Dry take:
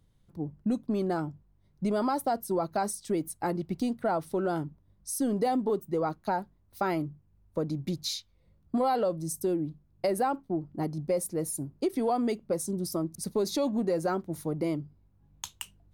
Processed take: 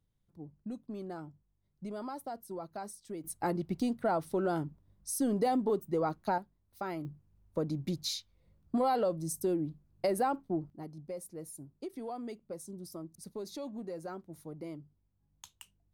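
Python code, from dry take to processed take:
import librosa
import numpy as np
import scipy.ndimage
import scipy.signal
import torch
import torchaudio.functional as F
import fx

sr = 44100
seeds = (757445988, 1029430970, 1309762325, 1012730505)

y = fx.gain(x, sr, db=fx.steps((0.0, -12.5), (3.24, -2.0), (6.38, -9.0), (7.05, -2.5), (10.7, -13.0)))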